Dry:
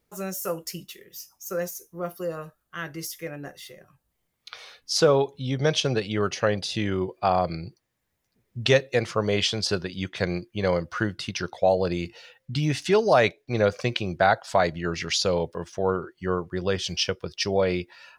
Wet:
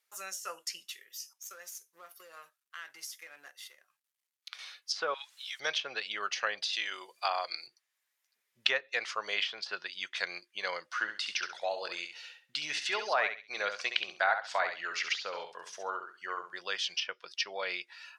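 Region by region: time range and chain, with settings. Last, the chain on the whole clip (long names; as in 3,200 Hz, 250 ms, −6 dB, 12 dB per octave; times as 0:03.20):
0:01.33–0:04.59: mu-law and A-law mismatch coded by A + downward compressor 4 to 1, threshold −36 dBFS
0:05.14–0:05.60: high-pass filter 1,400 Hz 24 dB per octave + bit-depth reduction 10 bits, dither triangular
0:06.73–0:07.67: bass and treble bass −14 dB, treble +13 dB + mains-hum notches 60/120/180/240/300 Hz
0:10.89–0:16.60: mains-hum notches 60/120/180/240 Hz + repeating echo 67 ms, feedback 21%, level −8 dB
whole clip: high-pass filter 1,400 Hz 12 dB per octave; treble cut that deepens with the level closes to 1,800 Hz, closed at −24 dBFS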